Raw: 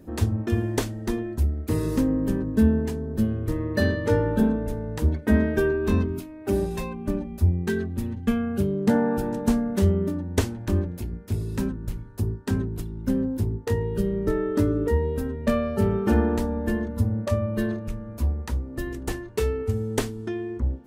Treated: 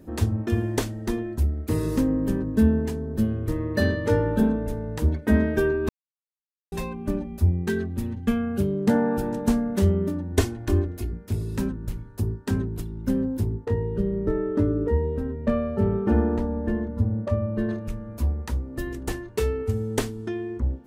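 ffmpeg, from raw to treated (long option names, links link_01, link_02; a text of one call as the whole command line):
ffmpeg -i in.wav -filter_complex "[0:a]asettb=1/sr,asplit=3[link_01][link_02][link_03];[link_01]atrim=end=10.324[link_04];[link_02]atrim=start=10.32:end=11.13,asetpts=PTS-STARTPTS,afade=type=in:duration=0.004:curve=qsin,afade=type=out:start_time=0.806:duration=0.004:curve=qsin,aecho=1:1:2.8:0.65,atrim=end_sample=35721[link_05];[link_03]atrim=start=11.126[link_06];[link_04][link_05]acrossfade=duration=0.004:curve1=hsin:curve2=qsin[link_07];[link_07][link_06]acrossfade=duration=0.004:curve1=qsin:curve2=hsin,asettb=1/sr,asplit=3[link_08][link_09][link_10];[link_08]atrim=end=13.654[link_11];[link_09]atrim=start=13.65:end=17.69,asetpts=PTS-STARTPTS,afade=type=in:duration=0.004:curve=qsin,afade=type=out:start_time=4.036:duration=0.004:curve=qsin,lowpass=frequency=1100:poles=1[link_12];[link_10]atrim=start=17.686[link_13];[link_11][link_12]acrossfade=duration=0.004:curve1=hsin:curve2=qsin[link_14];[link_14][link_13]acrossfade=duration=0.004:curve1=qsin:curve2=hsin,asplit=3[link_15][link_16][link_17];[link_15]atrim=end=5.89,asetpts=PTS-STARTPTS,afade=type=out:start_time=5.886:duration=0.004:curve=hsin[link_18];[link_16]atrim=start=5.89:end=6.72,asetpts=PTS-STARTPTS,volume=0[link_19];[link_17]atrim=start=6.72,asetpts=PTS-STARTPTS,afade=type=in:duration=0.004:curve=hsin[link_20];[link_18][link_19][link_20]concat=n=3:v=0:a=1" out.wav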